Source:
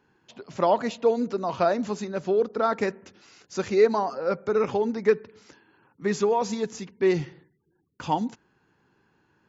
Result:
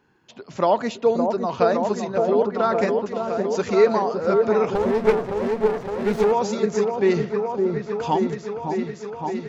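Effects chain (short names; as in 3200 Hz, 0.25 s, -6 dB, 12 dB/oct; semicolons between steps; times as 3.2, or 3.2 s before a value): repeats that get brighter 0.564 s, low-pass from 750 Hz, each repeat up 1 oct, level -3 dB; 4.75–6.32 running maximum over 17 samples; gain +2.5 dB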